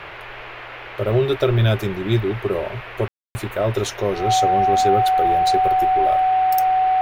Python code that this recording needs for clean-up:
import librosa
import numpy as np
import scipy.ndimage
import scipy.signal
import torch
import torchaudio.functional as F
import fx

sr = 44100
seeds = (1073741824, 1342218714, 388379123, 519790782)

y = fx.notch(x, sr, hz=750.0, q=30.0)
y = fx.fix_ambience(y, sr, seeds[0], print_start_s=0.0, print_end_s=0.5, start_s=3.08, end_s=3.35)
y = fx.noise_reduce(y, sr, print_start_s=0.0, print_end_s=0.5, reduce_db=29.0)